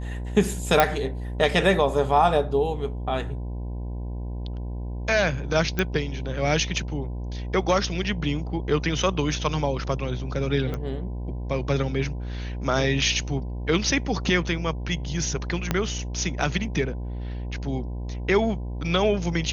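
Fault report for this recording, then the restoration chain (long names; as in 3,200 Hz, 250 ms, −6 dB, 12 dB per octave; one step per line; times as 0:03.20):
mains buzz 60 Hz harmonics 17 −31 dBFS
0:00.80: click −3 dBFS
0:05.79: click −10 dBFS
0:10.74: click −18 dBFS
0:15.71: click −8 dBFS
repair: click removal
hum removal 60 Hz, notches 17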